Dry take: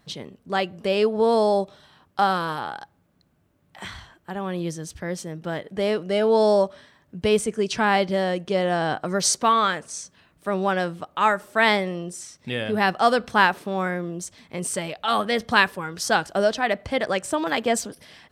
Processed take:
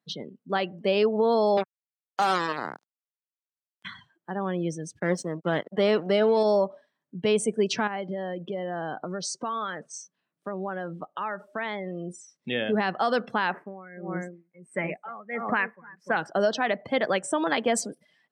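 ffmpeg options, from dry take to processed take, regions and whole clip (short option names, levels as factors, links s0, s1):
-filter_complex "[0:a]asettb=1/sr,asplit=3[s0][s1][s2];[s0]atrim=end=1.574[s3];[s1]atrim=start=1.57:end=3.85,asetpts=PTS-STARTPTS,afade=t=in:d=0.004:c=qsin,afade=t=out:st=2.276:d=0.004:c=qsin,highpass=160,bass=f=250:g=-5,treble=f=4000:g=-3,acrusher=bits=3:mix=0:aa=0.5[s4];[s2]atrim=start=3.846[s5];[s3][s4]acrossfade=d=0.004:c1=hsin:c2=qsin[s6];[s6][s5]acrossfade=d=0.004:c1=qsin:c2=hsin,asettb=1/sr,asplit=3[s7][s8][s9];[s7]atrim=end=4.994[s10];[s8]atrim=start=4.99:end=6.43,asetpts=PTS-STARTPTS,afade=t=in:d=0.004:c=qsin,afade=t=out:st=1.436:d=0.004:c=qsin,acontrast=46,aeval=exprs='sgn(val(0))*max(abs(val(0))-0.02,0)':c=same[s11];[s9]atrim=start=6.426[s12];[s10][s11]acrossfade=d=0.004:c1=hsin:c2=qsin[s13];[s13][s12]acrossfade=d=0.004:c1=qsin:c2=hsin,asettb=1/sr,asplit=3[s14][s15][s16];[s14]atrim=end=7.874[s17];[s15]atrim=start=7.87:end=12.36,asetpts=PTS-STARTPTS,afade=t=in:d=0.004:c=qsin,afade=t=out:st=4.486:d=0.004:c=qsin,highshelf=f=7400:g=-7.5,acompressor=threshold=0.0355:ratio=4:attack=3.2:release=140:knee=1:detection=peak[s18];[s16]atrim=start=12.356[s19];[s17][s18]acrossfade=d=0.004:c1=hsin:c2=qsin[s20];[s20][s19]acrossfade=d=0.004:c1=qsin:c2=hsin,asettb=1/sr,asplit=3[s21][s22][s23];[s21]atrim=end=13.524[s24];[s22]atrim=start=13.52:end=16.17,asetpts=PTS-STARTPTS,afade=t=in:d=0.004:c=qsin,afade=t=out:st=2.646:d=0.004:c=qsin,highshelf=f=2800:t=q:w=3:g=-8.5,asplit=2[s25][s26];[s26]adelay=297,lowpass=f=1000:p=1,volume=0.447,asplit=2[s27][s28];[s28]adelay=297,lowpass=f=1000:p=1,volume=0.15,asplit=2[s29][s30];[s30]adelay=297,lowpass=f=1000:p=1,volume=0.15[s31];[s25][s27][s29][s31]amix=inputs=4:normalize=0,atrim=end_sample=116865,aeval=exprs='val(0)*pow(10,-20*(0.5-0.5*cos(2*PI*1.5*n/s))/20)':c=same[s32];[s23]atrim=start=16.166[s33];[s24][s32]acrossfade=d=0.004:c1=hsin:c2=qsin[s34];[s34][s33]acrossfade=d=0.004:c1=qsin:c2=hsin,afftdn=nr=23:nf=-38,highpass=f=150:w=0.5412,highpass=f=150:w=1.3066,alimiter=limit=0.211:level=0:latency=1:release=89"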